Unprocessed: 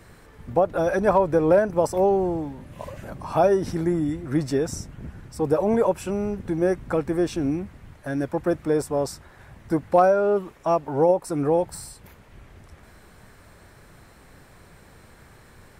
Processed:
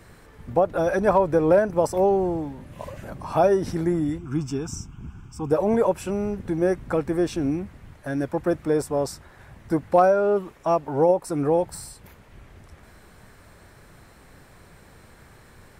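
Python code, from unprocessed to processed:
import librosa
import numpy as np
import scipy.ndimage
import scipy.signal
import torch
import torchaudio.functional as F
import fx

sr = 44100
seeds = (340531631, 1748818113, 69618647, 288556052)

y = fx.fixed_phaser(x, sr, hz=2800.0, stages=8, at=(4.18, 5.51))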